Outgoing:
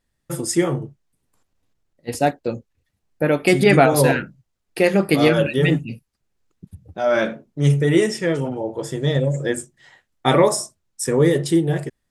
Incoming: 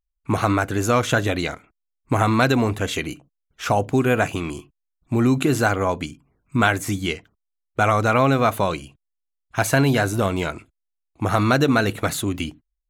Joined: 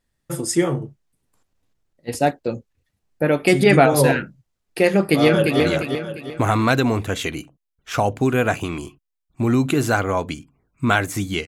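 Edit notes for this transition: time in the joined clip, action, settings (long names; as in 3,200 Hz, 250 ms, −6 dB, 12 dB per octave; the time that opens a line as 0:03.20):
outgoing
0:04.98–0:05.60: delay throw 350 ms, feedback 40%, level −4.5 dB
0:05.60: continue with incoming from 0:01.32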